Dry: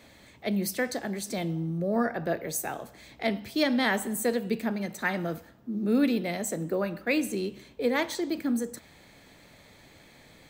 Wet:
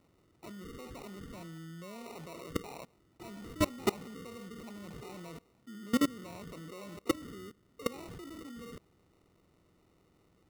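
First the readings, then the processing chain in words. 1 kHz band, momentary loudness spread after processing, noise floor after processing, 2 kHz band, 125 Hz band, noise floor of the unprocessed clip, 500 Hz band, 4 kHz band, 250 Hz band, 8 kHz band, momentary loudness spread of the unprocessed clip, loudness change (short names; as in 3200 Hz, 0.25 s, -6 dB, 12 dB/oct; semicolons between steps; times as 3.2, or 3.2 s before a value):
-9.0 dB, 18 LU, -69 dBFS, -14.5 dB, -10.0 dB, -55 dBFS, -11.5 dB, -9.0 dB, -10.0 dB, -12.0 dB, 11 LU, -10.5 dB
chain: nonlinear frequency compression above 1100 Hz 4:1; sample-and-hold 27×; level quantiser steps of 22 dB; gain -2 dB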